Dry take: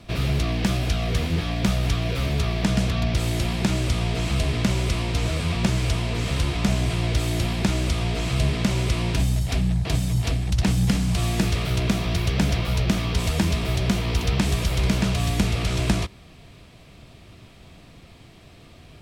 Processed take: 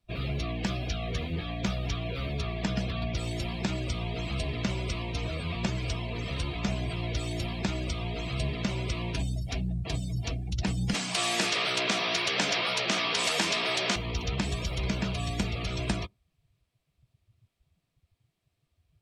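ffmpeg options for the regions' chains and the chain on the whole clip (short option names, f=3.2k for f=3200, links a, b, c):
-filter_complex "[0:a]asettb=1/sr,asplit=3[a][b][c];[a]atrim=end=10.944[d];[b]atrim=start=10.94:end=13.96,asetpts=PTS-STARTPTS,afade=t=in:d=0.004:c=qsin,afade=t=out:st=3.016:d=0.004:c=qsin,highpass=210,asplit=2[e][f];[f]highpass=f=720:p=1,volume=15dB,asoftclip=type=tanh:threshold=-9dB[g];[e][g]amix=inputs=2:normalize=0,lowpass=f=6.1k:p=1,volume=-6dB[h];[c]atrim=start=13.956[i];[d][h]acrossfade=d=0.004:c1=hsin:c2=qsin[j];[j][i]acrossfade=d=0.004:c1=qsin:c2=hsin,lowshelf=f=330:g=-5.5,afftdn=nr=27:nf=-34,highshelf=f=8.6k:g=11.5,volume=-4.5dB"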